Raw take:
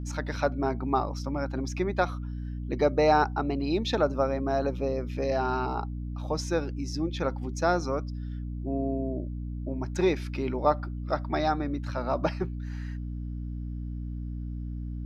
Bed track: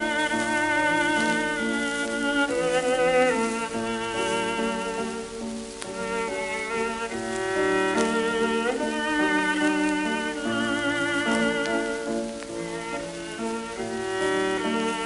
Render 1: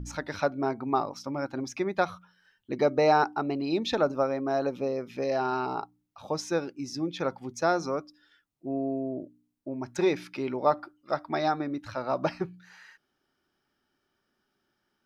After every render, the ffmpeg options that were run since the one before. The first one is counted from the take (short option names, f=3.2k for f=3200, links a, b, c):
-af "bandreject=f=60:t=h:w=4,bandreject=f=120:t=h:w=4,bandreject=f=180:t=h:w=4,bandreject=f=240:t=h:w=4,bandreject=f=300:t=h:w=4"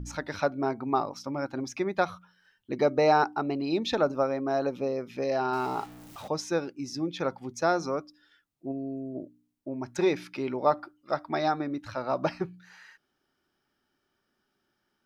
-filter_complex "[0:a]asettb=1/sr,asplit=3[a][b][c];[a]atrim=end=5.534[d];[b]atrim=start=5.53:end=6.28,asetpts=PTS-STARTPTS,afade=t=in:d=0.004:c=qsin,afade=t=out:st=0.746:d=0.004:c=qsin,aeval=exprs='val(0)+0.5*0.00794*sgn(val(0))':c=same[e];[c]atrim=start=6.276[f];[d][e]acrossfade=d=0.004:c1=hsin:c2=qsin[g];[g][f]acrossfade=d=0.004:c1=qsin:c2=hsin,asplit=3[h][i][j];[h]afade=t=out:st=8.71:d=0.02[k];[i]equalizer=f=990:t=o:w=2.2:g=-15,afade=t=in:st=8.71:d=0.02,afade=t=out:st=9.14:d=0.02[l];[j]afade=t=in:st=9.14:d=0.02[m];[k][l][m]amix=inputs=3:normalize=0"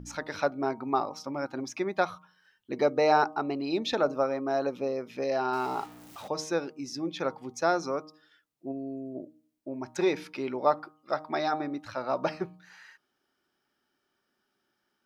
-af "lowshelf=f=120:g=-11.5,bandreject=f=155.3:t=h:w=4,bandreject=f=310.6:t=h:w=4,bandreject=f=465.9:t=h:w=4,bandreject=f=621.2:t=h:w=4,bandreject=f=776.5:t=h:w=4,bandreject=f=931.8:t=h:w=4,bandreject=f=1.0871k:t=h:w=4,bandreject=f=1.2424k:t=h:w=4"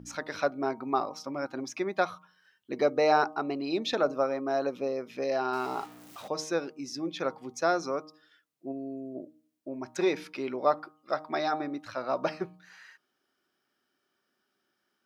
-af "highpass=f=150:p=1,bandreject=f=870:w=12"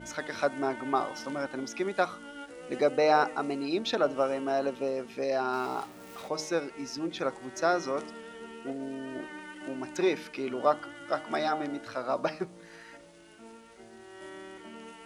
-filter_complex "[1:a]volume=-20.5dB[a];[0:a][a]amix=inputs=2:normalize=0"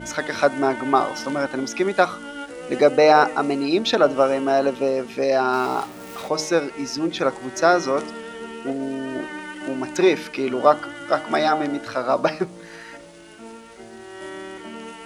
-af "volume=10dB,alimiter=limit=-2dB:level=0:latency=1"